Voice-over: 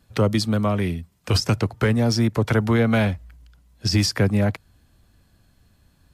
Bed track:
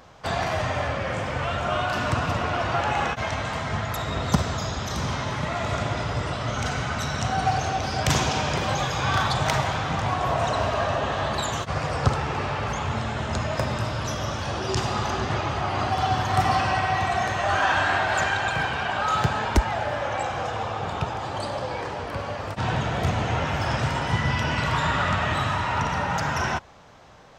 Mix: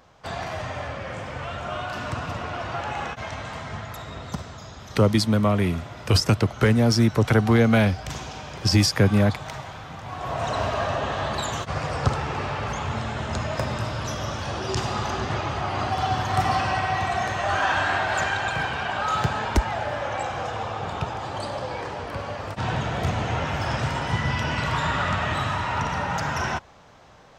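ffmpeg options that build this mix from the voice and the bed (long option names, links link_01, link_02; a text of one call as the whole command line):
ffmpeg -i stem1.wav -i stem2.wav -filter_complex "[0:a]adelay=4800,volume=1dB[link_01];[1:a]volume=5.5dB,afade=type=out:start_time=3.59:duration=0.92:silence=0.473151,afade=type=in:start_time=10.05:duration=0.54:silence=0.281838[link_02];[link_01][link_02]amix=inputs=2:normalize=0" out.wav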